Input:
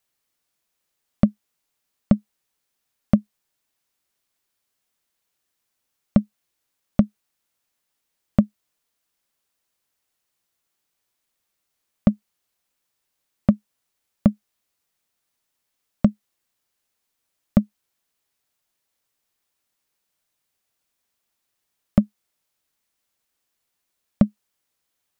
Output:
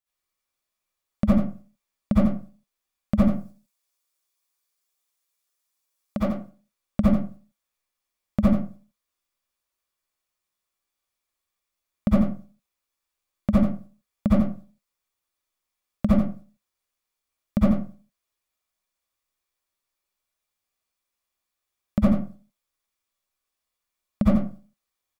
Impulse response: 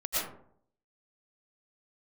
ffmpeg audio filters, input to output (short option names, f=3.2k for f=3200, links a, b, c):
-filter_complex "[0:a]asettb=1/sr,asplit=3[a][b][c];[a]atrim=end=3.184[d];[b]atrim=start=3.18:end=6.2,asetpts=PTS-STARTPTS,afade=t=in:d=0.004:c=qsin,afade=t=out:st=3.016:d=0.004:c=qsin,bass=f=250:g=-9,treble=f=4k:g=7[e];[c]atrim=start=6.196[f];[d][e]acrossfade=d=0.004:c1=hsin:c2=qsin[g];[g][f]acrossfade=d=0.004:c1=qsin:c2=hsin,agate=range=-8dB:threshold=-51dB:ratio=16:detection=peak,aecho=1:1:87:0.355[h];[1:a]atrim=start_sample=2205,asetrate=79380,aresample=44100[i];[h][i]afir=irnorm=-1:irlink=0"